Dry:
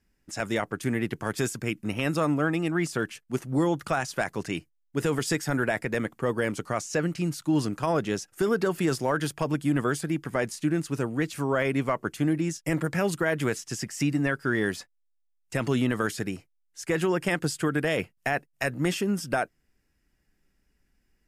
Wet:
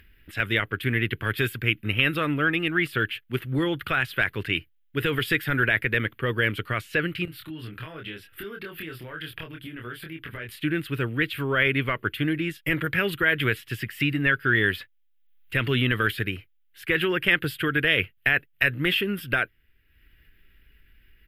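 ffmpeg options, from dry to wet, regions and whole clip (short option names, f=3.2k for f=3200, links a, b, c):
-filter_complex "[0:a]asettb=1/sr,asplit=3[a][b][c];[a]atrim=end=7.254[d];[b]atrim=start=7.25:end=10.49,asetpts=PTS-STARTPTS,afade=t=in:d=0.004:c=qsin,afade=t=out:st=3.236:d=0.004:c=qsin,bandreject=f=6.5k:w=6.2,acompressor=threshold=-39dB:ratio=4:attack=3.2:release=140:knee=1:detection=peak,asplit=2[e][f];[f]adelay=25,volume=-3dB[g];[e][g]amix=inputs=2:normalize=0,atrim=end_sample=142884[h];[c]atrim=start=10.486[i];[d][h]acrossfade=d=0.004:c1=hsin:c2=qsin[j];[j][i]acrossfade=d=0.004:c1=qsin:c2=hsin,firequalizer=gain_entry='entry(110,0);entry(160,-11);entry(260,-10);entry(410,-7);entry(750,-18);entry(1500,0);entry(3200,5);entry(6100,-30);entry(13000,1)':delay=0.05:min_phase=1,acompressor=mode=upward:threshold=-54dB:ratio=2.5,volume=8dB"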